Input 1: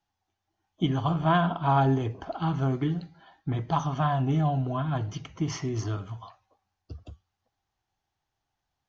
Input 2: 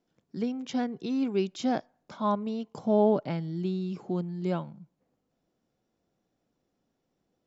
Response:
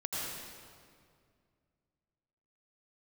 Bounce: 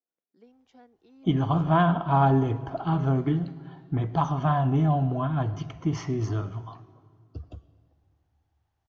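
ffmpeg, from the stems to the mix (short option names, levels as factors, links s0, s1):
-filter_complex "[0:a]adelay=450,volume=1.26,asplit=2[s0][s1];[s1]volume=0.1[s2];[1:a]highpass=380,volume=0.112[s3];[2:a]atrim=start_sample=2205[s4];[s2][s4]afir=irnorm=-1:irlink=0[s5];[s0][s3][s5]amix=inputs=3:normalize=0,highshelf=f=2500:g=-9.5"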